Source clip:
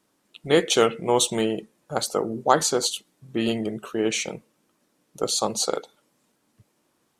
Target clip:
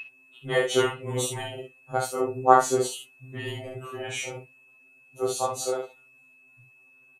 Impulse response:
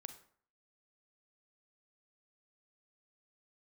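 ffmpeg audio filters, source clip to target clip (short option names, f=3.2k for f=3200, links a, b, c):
-filter_complex "[0:a]equalizer=f=4.9k:w=1.1:g=-11.5,aeval=exprs='val(0)+0.0282*sin(2*PI*2600*n/s)':c=same,aecho=1:1:26|64:0.668|0.562,asplit=2[a][b];[1:a]atrim=start_sample=2205,afade=t=out:st=0.13:d=0.01,atrim=end_sample=6174,asetrate=57330,aresample=44100[c];[b][c]afir=irnorm=-1:irlink=0,volume=3dB[d];[a][d]amix=inputs=2:normalize=0,afftfilt=real='re*2.45*eq(mod(b,6),0)':imag='im*2.45*eq(mod(b,6),0)':win_size=2048:overlap=0.75,volume=-5dB"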